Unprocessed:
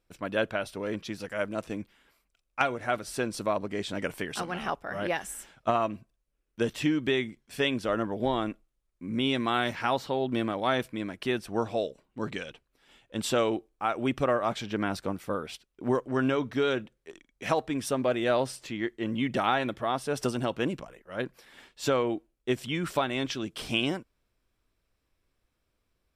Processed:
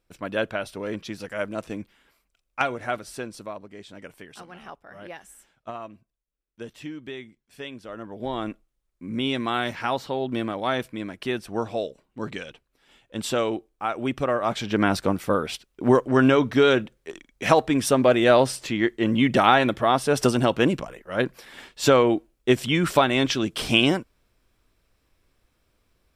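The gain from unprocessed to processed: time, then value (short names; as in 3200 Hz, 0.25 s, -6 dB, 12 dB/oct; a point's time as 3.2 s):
2.83 s +2 dB
3.67 s -10 dB
7.91 s -10 dB
8.48 s +1.5 dB
14.29 s +1.5 dB
14.84 s +9 dB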